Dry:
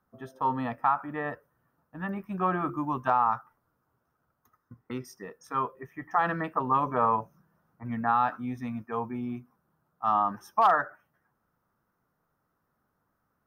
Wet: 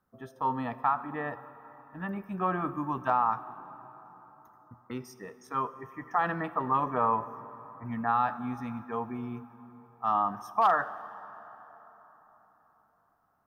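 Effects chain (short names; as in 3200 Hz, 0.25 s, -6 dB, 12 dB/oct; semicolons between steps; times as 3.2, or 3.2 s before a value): plate-style reverb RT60 4.3 s, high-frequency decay 0.55×, DRR 14 dB; gain -2 dB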